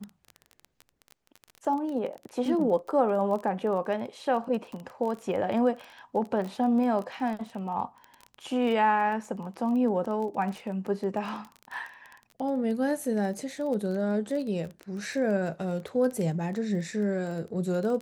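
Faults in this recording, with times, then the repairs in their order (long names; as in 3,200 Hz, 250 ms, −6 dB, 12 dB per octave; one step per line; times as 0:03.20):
surface crackle 20 per second −33 dBFS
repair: click removal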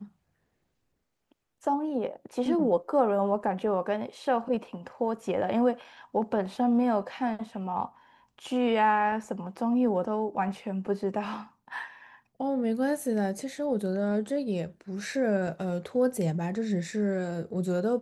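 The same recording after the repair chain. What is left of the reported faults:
none of them is left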